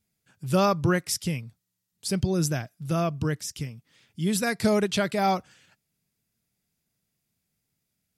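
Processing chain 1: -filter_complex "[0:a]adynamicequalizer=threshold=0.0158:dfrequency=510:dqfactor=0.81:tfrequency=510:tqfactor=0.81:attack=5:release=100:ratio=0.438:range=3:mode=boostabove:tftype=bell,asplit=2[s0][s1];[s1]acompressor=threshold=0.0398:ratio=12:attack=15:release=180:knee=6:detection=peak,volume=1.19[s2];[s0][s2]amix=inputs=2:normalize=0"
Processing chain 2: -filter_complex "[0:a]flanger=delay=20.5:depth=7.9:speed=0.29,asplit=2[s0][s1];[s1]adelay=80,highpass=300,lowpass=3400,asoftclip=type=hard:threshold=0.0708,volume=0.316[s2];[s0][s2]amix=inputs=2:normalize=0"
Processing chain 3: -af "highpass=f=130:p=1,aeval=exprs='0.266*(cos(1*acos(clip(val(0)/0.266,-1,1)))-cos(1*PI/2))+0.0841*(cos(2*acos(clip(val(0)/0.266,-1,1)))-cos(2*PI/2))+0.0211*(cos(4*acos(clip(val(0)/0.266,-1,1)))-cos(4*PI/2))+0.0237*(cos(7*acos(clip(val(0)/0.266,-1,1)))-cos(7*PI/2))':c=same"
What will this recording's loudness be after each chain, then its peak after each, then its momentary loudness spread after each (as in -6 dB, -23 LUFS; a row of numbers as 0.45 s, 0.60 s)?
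-21.0 LUFS, -29.5 LUFS, -28.0 LUFS; -7.0 dBFS, -13.5 dBFS, -8.0 dBFS; 12 LU, 13 LU, 15 LU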